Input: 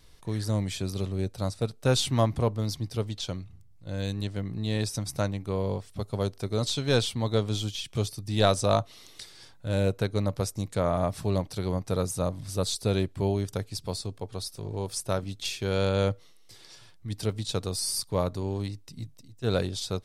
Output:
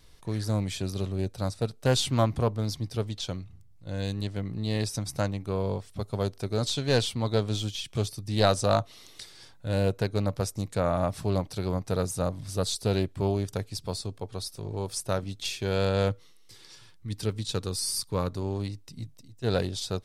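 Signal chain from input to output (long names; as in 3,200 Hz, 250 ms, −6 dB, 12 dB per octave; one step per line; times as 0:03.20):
0:16.09–0:18.36: parametric band 660 Hz −12 dB 0.27 octaves
highs frequency-modulated by the lows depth 0.17 ms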